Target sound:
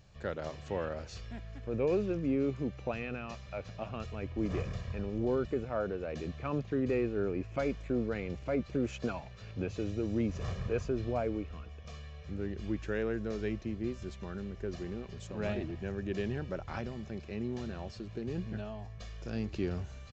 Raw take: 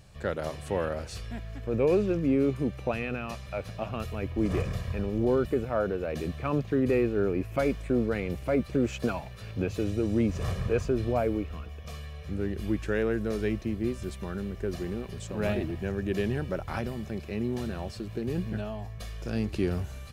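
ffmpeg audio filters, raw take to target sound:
-af "aresample=16000,aresample=44100,volume=0.501"

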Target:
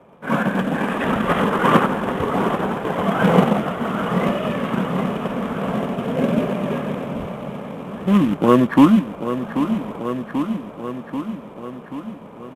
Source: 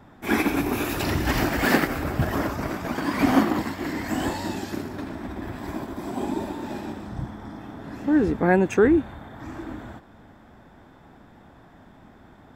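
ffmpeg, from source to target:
-filter_complex "[0:a]acrossover=split=260 3400:gain=0.0891 1 0.141[s0][s1][s2];[s0][s1][s2]amix=inputs=3:normalize=0,asplit=2[s3][s4];[s4]acrusher=bits=2:mode=log:mix=0:aa=0.000001,volume=0.708[s5];[s3][s5]amix=inputs=2:normalize=0,highshelf=f=5600:t=q:w=3:g=-6,asetrate=29433,aresample=44100,atempo=1.49831,asplit=2[s6][s7];[s7]aecho=0:1:786|1572|2358|3144|3930|4716|5502:0.282|0.166|0.0981|0.0579|0.0342|0.0201|0.0119[s8];[s6][s8]amix=inputs=2:normalize=0,dynaudnorm=f=480:g=3:m=2.37"

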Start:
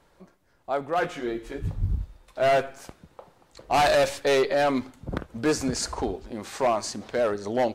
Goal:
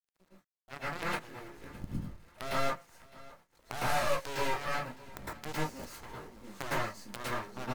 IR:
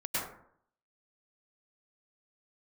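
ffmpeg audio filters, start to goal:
-filter_complex "[0:a]asplit=2[s0][s1];[s1]acompressor=threshold=0.0282:ratio=12,volume=0.794[s2];[s0][s2]amix=inputs=2:normalize=0,acrusher=bits=5:dc=4:mix=0:aa=0.000001,aeval=exprs='0.266*(cos(1*acos(clip(val(0)/0.266,-1,1)))-cos(1*PI/2))+0.0422*(cos(2*acos(clip(val(0)/0.266,-1,1)))-cos(2*PI/2))+0.119*(cos(3*acos(clip(val(0)/0.266,-1,1)))-cos(3*PI/2))':c=same,aecho=1:1:610|1220|1830:0.0891|0.0321|0.0116[s3];[1:a]atrim=start_sample=2205,atrim=end_sample=6615,asetrate=41013,aresample=44100[s4];[s3][s4]afir=irnorm=-1:irlink=0,volume=0.422"

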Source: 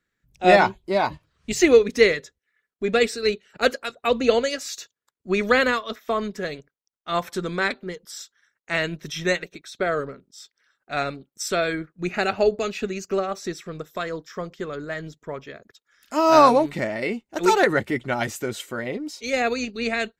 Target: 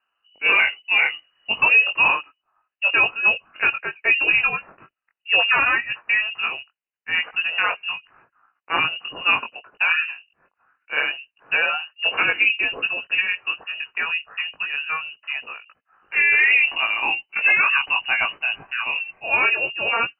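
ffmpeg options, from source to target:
-af "flanger=delay=18:depth=4.2:speed=0.7,lowpass=f=2600:t=q:w=0.5098,lowpass=f=2600:t=q:w=0.6013,lowpass=f=2600:t=q:w=0.9,lowpass=f=2600:t=q:w=2.563,afreqshift=-3000,alimiter=level_in=5.01:limit=0.891:release=50:level=0:latency=1,volume=0.447"

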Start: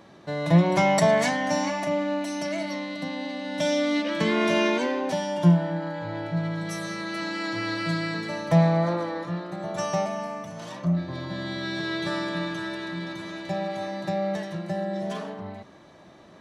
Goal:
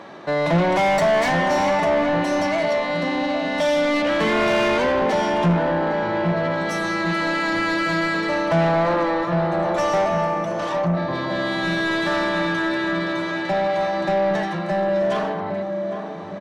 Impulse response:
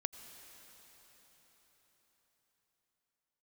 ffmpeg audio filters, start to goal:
-filter_complex "[0:a]asplit=2[s0][s1];[s1]adelay=807,lowpass=f=880:p=1,volume=0.422,asplit=2[s2][s3];[s3]adelay=807,lowpass=f=880:p=1,volume=0.55,asplit=2[s4][s5];[s5]adelay=807,lowpass=f=880:p=1,volume=0.55,asplit=2[s6][s7];[s7]adelay=807,lowpass=f=880:p=1,volume=0.55,asplit=2[s8][s9];[s9]adelay=807,lowpass=f=880:p=1,volume=0.55,asplit=2[s10][s11];[s11]adelay=807,lowpass=f=880:p=1,volume=0.55,asplit=2[s12][s13];[s13]adelay=807,lowpass=f=880:p=1,volume=0.55[s14];[s0][s2][s4][s6][s8][s10][s12][s14]amix=inputs=8:normalize=0,asplit=2[s15][s16];[s16]highpass=f=720:p=1,volume=20,asoftclip=type=tanh:threshold=0.447[s17];[s15][s17]amix=inputs=2:normalize=0,lowpass=f=1500:p=1,volume=0.501,volume=0.708"

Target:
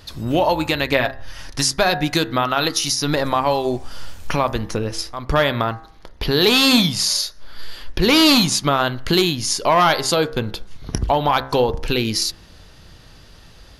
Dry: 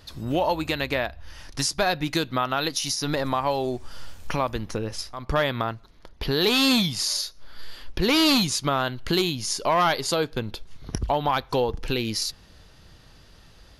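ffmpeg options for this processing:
-filter_complex "[0:a]asettb=1/sr,asplit=3[s0][s1][s2];[s0]atrim=end=0.914[s3];[s1]atrim=start=0.91:end=1.5,asetpts=PTS-STARTPTS,afade=t=in:d=0.004:c=qsin,afade=t=out:st=0.586:d=0.004:c=qsin,aecho=1:1:7.4:0.57,atrim=end_sample=26019[s4];[s2]atrim=start=1.496[s5];[s3][s4]acrossfade=d=0.004:c1=hsin:c2=qsin[s6];[s6][s5]acrossfade=d=0.004:c1=qsin:c2=hsin,bandreject=f=66.27:t=h:w=4,bandreject=f=132.54:t=h:w=4,bandreject=f=198.81:t=h:w=4,bandreject=f=265.08:t=h:w=4,bandreject=f=331.35:t=h:w=4,bandreject=f=397.62:t=h:w=4,bandreject=f=463.89:t=h:w=4,bandreject=f=530.16:t=h:w=4,bandreject=f=596.43:t=h:w=4,bandreject=f=662.7:t=h:w=4,bandreject=f=728.97:t=h:w=4,bandreject=f=795.24:t=h:w=4,bandreject=f=861.51:t=h:w=4,bandreject=f=927.78:t=h:w=4,bandreject=f=994.05:t=h:w=4,bandreject=f=1060.32:t=h:w=4,bandreject=f=1126.59:t=h:w=4,bandreject=f=1192.86:t=h:w=4,bandreject=f=1259.13:t=h:w=4,bandreject=f=1325.4:t=h:w=4,bandreject=f=1391.67:t=h:w=4,bandreject=f=1457.94:t=h:w=4,bandreject=f=1524.21:t=h:w=4,bandreject=f=1590.48:t=h:w=4,bandreject=f=1656.75:t=h:w=4,bandreject=f=1723.02:t=h:w=4,bandreject=f=1789.29:t=h:w=4,bandreject=f=1855.56:t=h:w=4,bandreject=f=1921.83:t=h:w=4,bandreject=f=1988.1:t=h:w=4,bandreject=f=2054.37:t=h:w=4,volume=2.11"

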